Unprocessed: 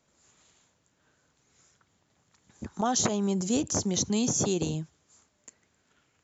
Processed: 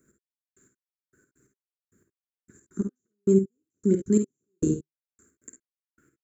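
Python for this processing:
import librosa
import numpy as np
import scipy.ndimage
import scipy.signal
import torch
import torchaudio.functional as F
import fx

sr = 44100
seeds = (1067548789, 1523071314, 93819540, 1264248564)

y = fx.step_gate(x, sr, bpm=133, pattern='x....x....x.', floor_db=-60.0, edge_ms=4.5)
y = fx.curve_eq(y, sr, hz=(150.0, 390.0, 800.0, 1500.0, 3100.0, 5700.0, 8200.0), db=(0, 9, -27, 3, -23, -14, 10))
y = fx.room_early_taps(y, sr, ms=(52, 67), db=(-8.0, -12.0))
y = F.gain(torch.from_numpy(y), 3.5).numpy()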